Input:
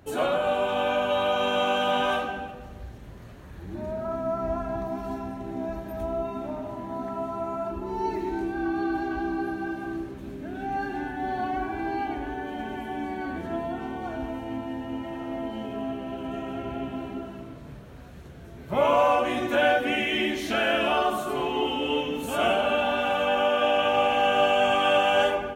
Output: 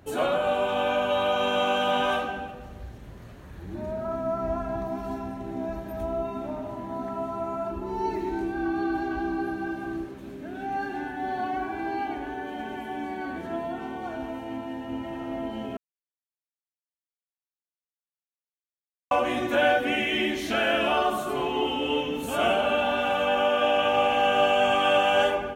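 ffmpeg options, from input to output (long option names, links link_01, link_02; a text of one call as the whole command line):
ffmpeg -i in.wav -filter_complex "[0:a]asettb=1/sr,asplit=3[link_01][link_02][link_03];[link_01]atrim=end=10.054[link_04];[link_02]atrim=start=10.05:end=14.89,asetpts=PTS-STARTPTS,afade=type=in:duration=0.004:curve=qsin,afade=type=out:start_time=4.836:duration=0.004:curve=qsin,lowshelf=frequency=130:gain=-9.5[link_05];[link_03]atrim=start=14.886[link_06];[link_04][link_05]acrossfade=duration=0.004:curve1=hsin:curve2=qsin[link_07];[link_07][link_06]acrossfade=duration=0.004:curve1=qsin:curve2=hsin,asplit=3[link_08][link_09][link_10];[link_08]atrim=end=15.77,asetpts=PTS-STARTPTS,afade=type=out:start_time=15.766:duration=0.004:curve=hsin[link_11];[link_09]atrim=start=15.77:end=19.11,asetpts=PTS-STARTPTS,volume=0[link_12];[link_10]atrim=start=19.11,asetpts=PTS-STARTPTS,afade=type=in:duration=0.004:curve=hsin[link_13];[link_11][link_12][link_13]concat=n=3:v=0:a=1" out.wav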